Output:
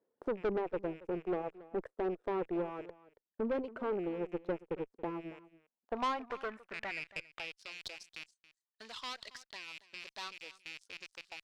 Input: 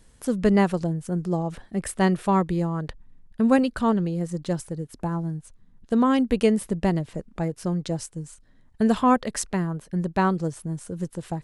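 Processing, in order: rattle on loud lows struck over -33 dBFS, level -25 dBFS; de-esser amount 70%; frequency weighting A; reverb removal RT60 1 s; treble shelf 2.3 kHz -11.5 dB; waveshaping leveller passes 3; compression 1.5:1, threshold -35 dBFS, peak gain reduction 7.5 dB; band-pass sweep 420 Hz -> 4.5 kHz, 5.28–7.73 s; valve stage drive 31 dB, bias 0.5; delay 277 ms -18.5 dB; trim +2.5 dB

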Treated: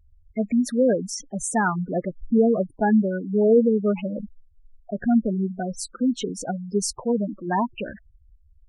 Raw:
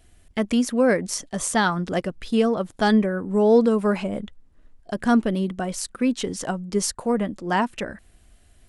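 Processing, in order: 2.16–2.64 s: waveshaping leveller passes 1; spectral gate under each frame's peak -10 dB strong

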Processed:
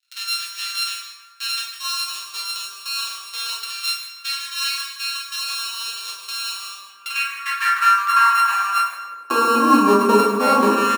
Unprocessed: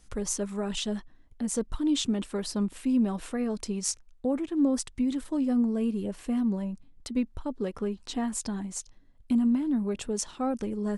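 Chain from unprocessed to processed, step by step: sorted samples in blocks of 32 samples; recorder AGC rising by 11 dB/s; peaking EQ 1.1 kHz +11.5 dB 0.46 oct; crossover distortion -53.5 dBFS; LFO high-pass square 0.28 Hz 420–1700 Hz; delay 153 ms -14.5 dB; reverberation RT60 1.5 s, pre-delay 7 ms, DRR -4.5 dB; high-pass sweep 3.8 kHz -> 220 Hz, 6.76–10.02 s

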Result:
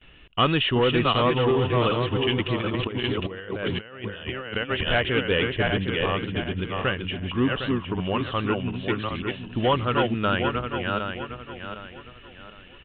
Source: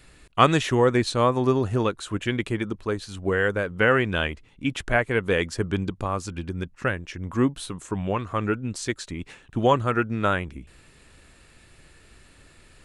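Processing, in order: backward echo that repeats 379 ms, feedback 56%, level -4 dB; gate with hold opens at -44 dBFS; peaking EQ 2.9 kHz +14 dB 0.26 oct; 2.61–4.88 s: compressor with a negative ratio -28 dBFS, ratio -0.5; saturation -13.5 dBFS, distortion -14 dB; resampled via 8 kHz

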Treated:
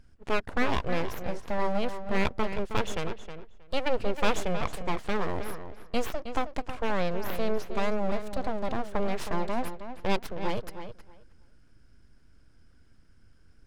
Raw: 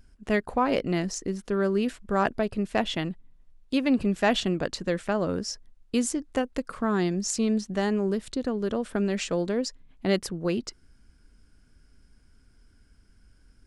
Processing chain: full-wave rectifier; treble shelf 7.3 kHz -9.5 dB; filtered feedback delay 316 ms, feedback 16%, low-pass 4.9 kHz, level -10 dB

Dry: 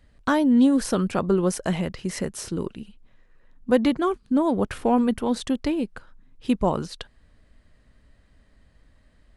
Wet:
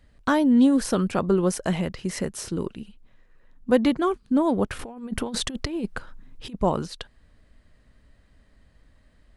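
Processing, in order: 4.79–6.55 s: compressor with a negative ratio -28 dBFS, ratio -0.5

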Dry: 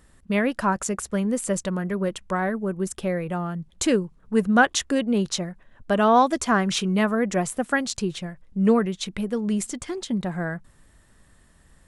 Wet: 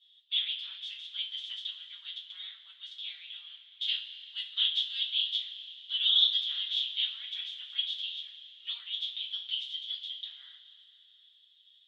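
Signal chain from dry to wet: spectral peaks clipped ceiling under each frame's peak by 23 dB; Butterworth band-pass 3.4 kHz, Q 6.9; two-slope reverb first 0.28 s, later 3.1 s, from -18 dB, DRR -6.5 dB

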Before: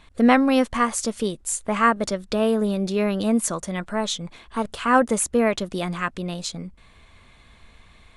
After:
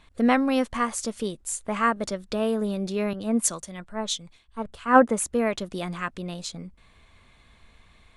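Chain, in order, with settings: 3.13–5.19 s: three bands expanded up and down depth 100%; trim -4.5 dB

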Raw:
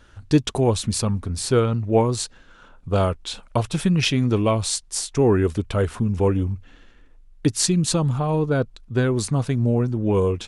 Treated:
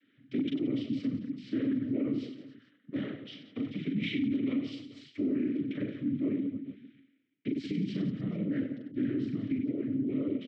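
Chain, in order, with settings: distance through air 280 m; hum notches 60/120/180/240 Hz; reverse bouncing-ball echo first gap 40 ms, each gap 1.4×, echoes 5; noise-vocoded speech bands 12; vowel filter i; hard clipper -16.5 dBFS, distortion -41 dB; peak limiter -25.5 dBFS, peak gain reduction 9 dB; trim +2.5 dB

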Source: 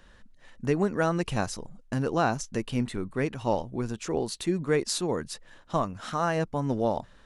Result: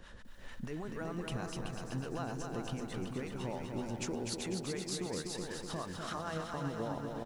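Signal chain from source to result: compression, threshold -39 dBFS, peak gain reduction 17.5 dB; peak limiter -33.5 dBFS, peak gain reduction 7.5 dB; harmonic tremolo 6.6 Hz, depth 70%, crossover 610 Hz; on a send: feedback delay 379 ms, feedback 40%, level -6 dB; on the sum: bit-crushed delay 248 ms, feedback 55%, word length 12-bit, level -5 dB; trim +6 dB

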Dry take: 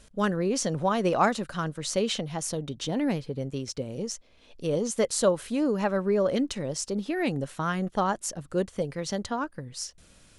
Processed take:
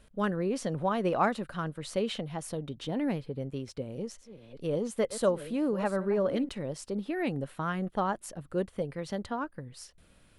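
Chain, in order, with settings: 3.72–6.49 s: chunks repeated in reverse 454 ms, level -13 dB; peaking EQ 6.3 kHz -12 dB 1 oct; trim -3.5 dB

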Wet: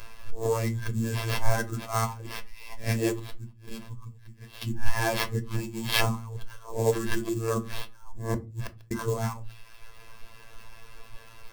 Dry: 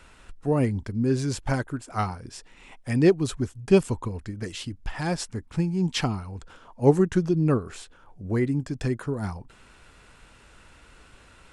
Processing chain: reverse spectral sustain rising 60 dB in 0.31 s; reverb removal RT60 1.1 s; 3.19–4.62 s: amplifier tone stack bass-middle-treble 6-0-2; in parallel at +2 dB: compressor with a negative ratio -26 dBFS, ratio -0.5; on the sum: sample-rate reducer 7.5 kHz, jitter 20%; robot voice 113 Hz; 8.33–8.91 s: inverted gate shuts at -11 dBFS, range -41 dB; reverberation RT60 0.30 s, pre-delay 3 ms, DRR 6 dB; trim -4.5 dB

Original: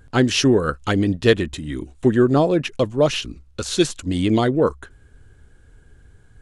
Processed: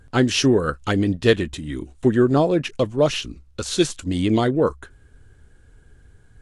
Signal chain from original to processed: trim -1 dB; Vorbis 64 kbps 32 kHz

